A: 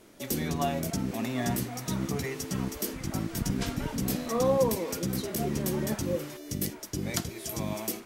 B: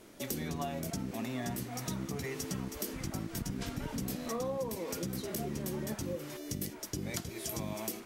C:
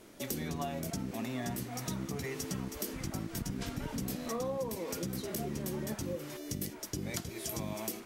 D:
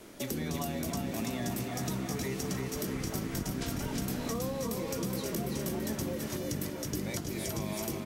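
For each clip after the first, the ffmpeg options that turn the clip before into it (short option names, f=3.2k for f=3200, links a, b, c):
-af "acompressor=threshold=-34dB:ratio=5"
-af anull
-filter_complex "[0:a]aecho=1:1:334|668|1002|1336|1670|2004:0.562|0.287|0.146|0.0746|0.038|0.0194,acrossover=split=360|1200|2800[a][b][c][d];[a]acompressor=threshold=-37dB:ratio=4[e];[b]acompressor=threshold=-45dB:ratio=4[f];[c]acompressor=threshold=-53dB:ratio=4[g];[d]acompressor=threshold=-43dB:ratio=4[h];[e][f][g][h]amix=inputs=4:normalize=0,volume=4.5dB"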